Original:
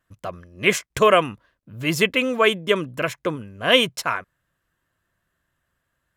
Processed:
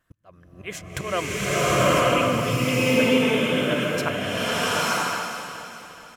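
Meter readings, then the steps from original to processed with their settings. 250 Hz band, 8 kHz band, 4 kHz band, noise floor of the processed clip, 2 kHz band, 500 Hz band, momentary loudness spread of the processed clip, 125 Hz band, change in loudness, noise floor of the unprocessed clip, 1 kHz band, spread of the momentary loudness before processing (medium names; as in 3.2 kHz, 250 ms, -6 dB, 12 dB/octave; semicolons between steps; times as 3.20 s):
+3.5 dB, +4.0 dB, -2.5 dB, -52 dBFS, -1.0 dB, -1.0 dB, 17 LU, +5.5 dB, -1.5 dB, -76 dBFS, 0.0 dB, 14 LU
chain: slow attack 565 ms; feedback delay 422 ms, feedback 47%, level -12.5 dB; swelling reverb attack 950 ms, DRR -12 dB; trim +1.5 dB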